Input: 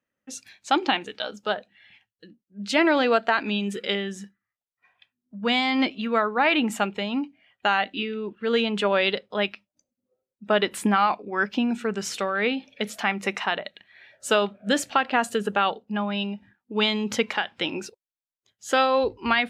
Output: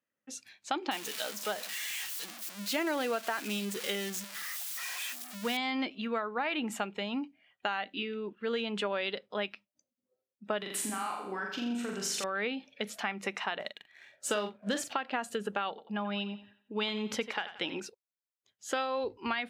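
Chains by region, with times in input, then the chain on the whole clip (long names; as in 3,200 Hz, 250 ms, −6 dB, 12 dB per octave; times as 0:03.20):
0:00.91–0:05.57: spike at every zero crossing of −15.5 dBFS + high-shelf EQ 5,600 Hz −10.5 dB
0:10.58–0:12.24: downward compressor, threshold −28 dBFS + high-shelf EQ 5,500 Hz +8.5 dB + flutter between parallel walls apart 7.2 metres, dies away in 0.74 s
0:13.60–0:14.93: leveller curve on the samples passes 1 + double-tracking delay 43 ms −9 dB
0:15.69–0:17.80: parametric band 6,800 Hz −3.5 dB 0.21 octaves + feedback echo with a high-pass in the loop 89 ms, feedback 38%, high-pass 180 Hz, level −14 dB
whole clip: high-pass filter 160 Hz 6 dB per octave; downward compressor 4 to 1, threshold −24 dBFS; level −5.5 dB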